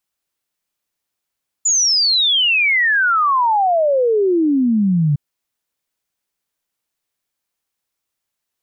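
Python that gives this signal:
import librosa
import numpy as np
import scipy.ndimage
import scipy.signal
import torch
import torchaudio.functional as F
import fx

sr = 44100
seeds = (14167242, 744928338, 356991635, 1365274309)

y = fx.ess(sr, length_s=3.51, from_hz=7100.0, to_hz=140.0, level_db=-12.0)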